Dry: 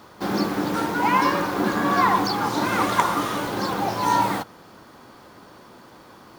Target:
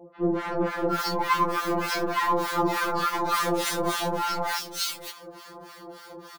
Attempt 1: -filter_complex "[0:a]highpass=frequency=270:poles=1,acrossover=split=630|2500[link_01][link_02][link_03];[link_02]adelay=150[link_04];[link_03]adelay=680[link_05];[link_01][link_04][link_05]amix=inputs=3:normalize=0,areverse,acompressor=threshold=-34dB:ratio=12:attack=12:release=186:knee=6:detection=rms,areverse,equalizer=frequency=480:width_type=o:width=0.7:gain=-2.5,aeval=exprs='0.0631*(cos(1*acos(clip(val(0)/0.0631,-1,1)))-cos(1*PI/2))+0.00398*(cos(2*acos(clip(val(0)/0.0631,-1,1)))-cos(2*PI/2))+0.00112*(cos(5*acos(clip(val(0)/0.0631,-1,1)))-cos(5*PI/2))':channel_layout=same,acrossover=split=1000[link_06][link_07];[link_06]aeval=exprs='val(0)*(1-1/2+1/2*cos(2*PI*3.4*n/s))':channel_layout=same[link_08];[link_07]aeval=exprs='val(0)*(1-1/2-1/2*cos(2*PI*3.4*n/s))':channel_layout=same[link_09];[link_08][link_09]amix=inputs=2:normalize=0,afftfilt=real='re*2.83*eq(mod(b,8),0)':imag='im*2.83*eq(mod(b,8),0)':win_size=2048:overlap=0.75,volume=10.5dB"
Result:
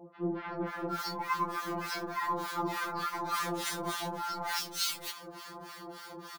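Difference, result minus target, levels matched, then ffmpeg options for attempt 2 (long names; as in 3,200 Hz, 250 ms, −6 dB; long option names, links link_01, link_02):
downward compressor: peak gain reduction +9.5 dB; 500 Hz band −3.0 dB
-filter_complex "[0:a]highpass=frequency=270:poles=1,acrossover=split=630|2500[link_01][link_02][link_03];[link_02]adelay=150[link_04];[link_03]adelay=680[link_05];[link_01][link_04][link_05]amix=inputs=3:normalize=0,areverse,acompressor=threshold=-23.5dB:ratio=12:attack=12:release=186:knee=6:detection=rms,areverse,equalizer=frequency=480:width_type=o:width=0.7:gain=5,aeval=exprs='0.0631*(cos(1*acos(clip(val(0)/0.0631,-1,1)))-cos(1*PI/2))+0.00398*(cos(2*acos(clip(val(0)/0.0631,-1,1)))-cos(2*PI/2))+0.00112*(cos(5*acos(clip(val(0)/0.0631,-1,1)))-cos(5*PI/2))':channel_layout=same,acrossover=split=1000[link_06][link_07];[link_06]aeval=exprs='val(0)*(1-1/2+1/2*cos(2*PI*3.4*n/s))':channel_layout=same[link_08];[link_07]aeval=exprs='val(0)*(1-1/2-1/2*cos(2*PI*3.4*n/s))':channel_layout=same[link_09];[link_08][link_09]amix=inputs=2:normalize=0,afftfilt=real='re*2.83*eq(mod(b,8),0)':imag='im*2.83*eq(mod(b,8),0)':win_size=2048:overlap=0.75,volume=10.5dB"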